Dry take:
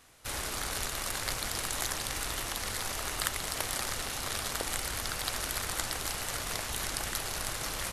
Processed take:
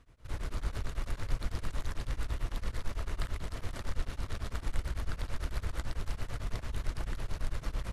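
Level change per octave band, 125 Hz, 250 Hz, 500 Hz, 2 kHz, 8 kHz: +6.0 dB, -1.0 dB, -6.0 dB, -10.5 dB, -20.0 dB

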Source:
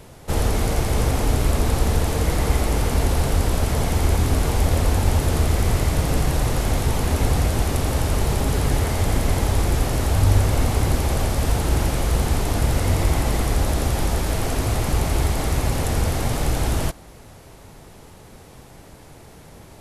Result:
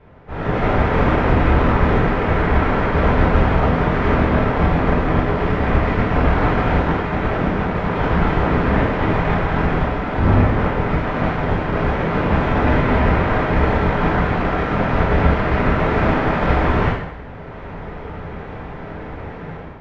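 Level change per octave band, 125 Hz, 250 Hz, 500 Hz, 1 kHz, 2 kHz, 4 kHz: +1.5 dB, +7.5 dB, +7.0 dB, +8.5 dB, +9.0 dB, -3.5 dB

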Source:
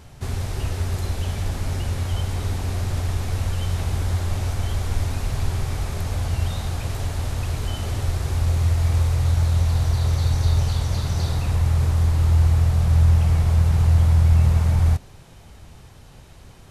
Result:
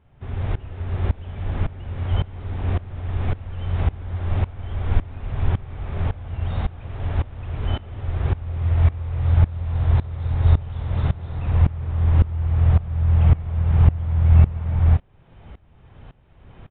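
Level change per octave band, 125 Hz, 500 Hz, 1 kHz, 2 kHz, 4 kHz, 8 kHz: -0.5 dB, -1.0 dB, -1.5 dB, -3.5 dB, -9.5 dB, under -40 dB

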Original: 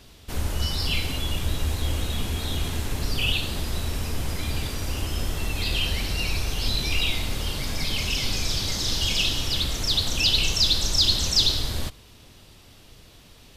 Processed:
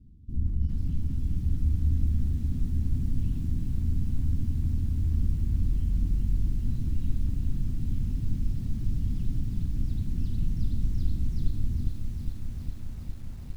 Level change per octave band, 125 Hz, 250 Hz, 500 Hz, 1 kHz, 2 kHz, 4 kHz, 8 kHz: +1.5 dB, -0.5 dB, -19.0 dB, under -25 dB, under -30 dB, under -35 dB, under -25 dB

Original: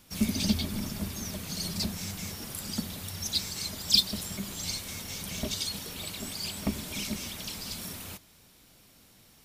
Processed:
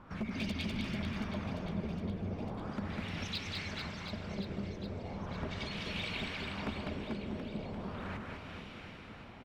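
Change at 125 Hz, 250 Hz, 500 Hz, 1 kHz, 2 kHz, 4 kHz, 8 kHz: -1.5 dB, -3.5 dB, +1.5 dB, +2.0 dB, +0.5 dB, -12.5 dB, -23.5 dB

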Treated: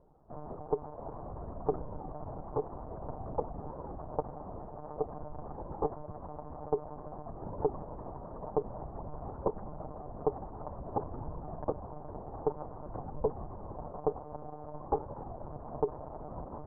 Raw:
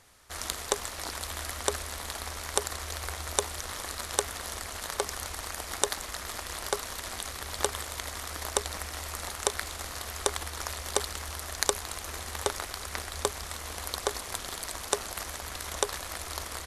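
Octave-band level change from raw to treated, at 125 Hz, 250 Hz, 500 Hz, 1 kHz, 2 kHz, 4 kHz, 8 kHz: 0.0 dB, +4.0 dB, +1.0 dB, -3.0 dB, under -25 dB, under -40 dB, under -40 dB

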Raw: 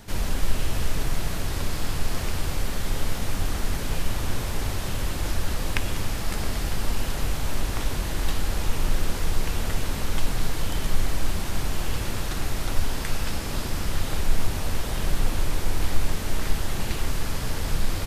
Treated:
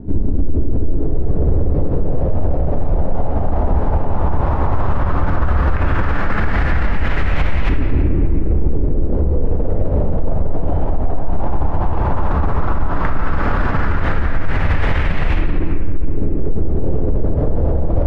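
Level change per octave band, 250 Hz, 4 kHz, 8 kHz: +11.5 dB, -7.0 dB, under -20 dB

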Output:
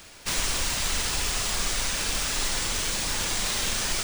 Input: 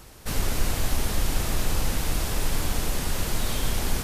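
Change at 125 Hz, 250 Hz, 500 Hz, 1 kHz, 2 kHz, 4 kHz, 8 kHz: -8.5 dB, -6.0 dB, -3.0 dB, +0.5 dB, +4.5 dB, +6.5 dB, +6.0 dB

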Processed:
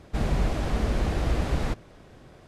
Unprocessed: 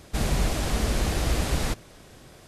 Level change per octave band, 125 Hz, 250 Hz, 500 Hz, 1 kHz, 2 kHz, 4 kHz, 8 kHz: 0.0 dB, 0.0 dB, -0.5 dB, -1.0 dB, -3.5 dB, -7.5 dB, -12.5 dB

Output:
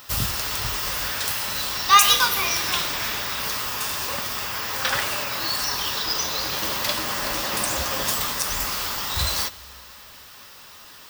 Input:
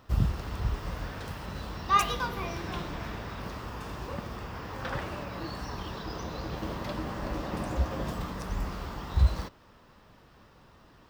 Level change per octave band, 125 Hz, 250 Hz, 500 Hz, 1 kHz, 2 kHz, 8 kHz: -4.0 dB, -1.5 dB, +4.0 dB, +8.5 dB, +14.0 dB, +23.0 dB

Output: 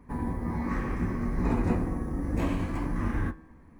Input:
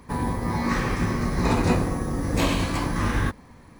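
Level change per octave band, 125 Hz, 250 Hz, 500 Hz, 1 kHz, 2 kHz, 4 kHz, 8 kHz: -5.5 dB, -4.5 dB, -7.5 dB, -9.0 dB, -10.5 dB, under -15 dB, under -15 dB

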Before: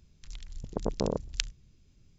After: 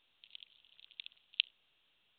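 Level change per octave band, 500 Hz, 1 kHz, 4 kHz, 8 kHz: under -40 dB, under -30 dB, +1.0 dB, no reading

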